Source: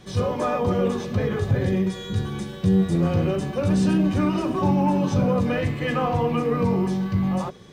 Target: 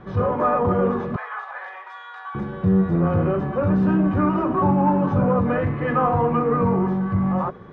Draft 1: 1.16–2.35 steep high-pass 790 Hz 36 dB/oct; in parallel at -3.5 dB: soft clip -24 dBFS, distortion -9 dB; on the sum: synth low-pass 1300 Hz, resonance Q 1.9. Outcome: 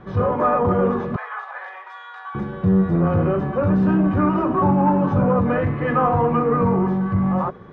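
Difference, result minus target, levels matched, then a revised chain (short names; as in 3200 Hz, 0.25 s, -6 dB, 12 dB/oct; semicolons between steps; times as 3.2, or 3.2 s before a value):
soft clip: distortion -5 dB
1.16–2.35 steep high-pass 790 Hz 36 dB/oct; in parallel at -3.5 dB: soft clip -33 dBFS, distortion -4 dB; on the sum: synth low-pass 1300 Hz, resonance Q 1.9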